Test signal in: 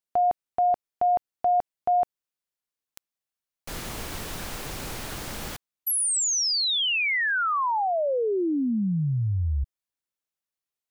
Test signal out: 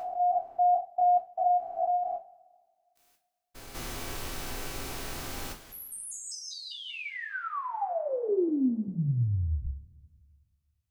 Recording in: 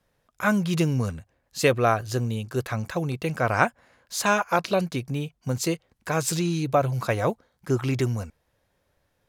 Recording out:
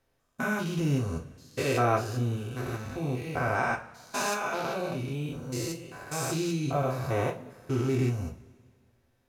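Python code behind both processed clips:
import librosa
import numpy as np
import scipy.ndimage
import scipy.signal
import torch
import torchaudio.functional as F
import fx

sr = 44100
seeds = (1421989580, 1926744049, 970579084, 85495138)

y = fx.spec_steps(x, sr, hold_ms=200)
y = fx.rev_double_slope(y, sr, seeds[0], early_s=0.27, late_s=1.9, knee_db=-22, drr_db=0.0)
y = F.gain(torch.from_numpy(y), -4.0).numpy()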